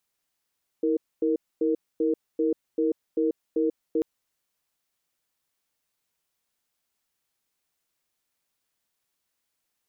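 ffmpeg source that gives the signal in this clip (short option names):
-f lavfi -i "aevalsrc='0.0668*(sin(2*PI*321*t)+sin(2*PI*465*t))*clip(min(mod(t,0.39),0.14-mod(t,0.39))/0.005,0,1)':d=3.19:s=44100"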